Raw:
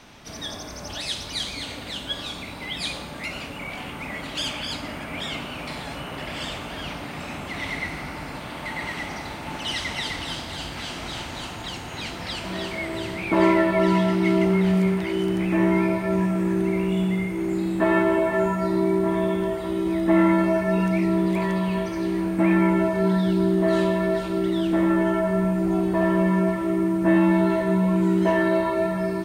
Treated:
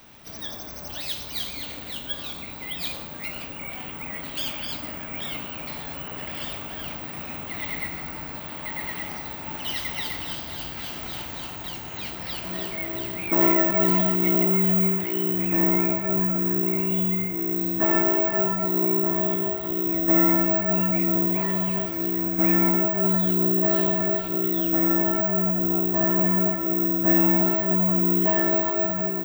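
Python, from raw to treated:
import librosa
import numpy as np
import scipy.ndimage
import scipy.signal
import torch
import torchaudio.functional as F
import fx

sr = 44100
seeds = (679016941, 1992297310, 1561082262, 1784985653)

y = (np.kron(x[::2], np.eye(2)[0]) * 2)[:len(x)]
y = y * 10.0 ** (-4.0 / 20.0)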